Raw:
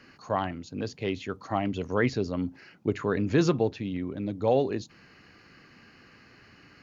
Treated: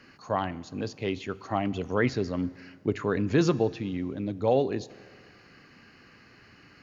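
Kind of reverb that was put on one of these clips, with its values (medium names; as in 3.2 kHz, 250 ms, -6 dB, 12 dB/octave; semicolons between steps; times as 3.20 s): Schroeder reverb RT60 2 s, combs from 26 ms, DRR 19 dB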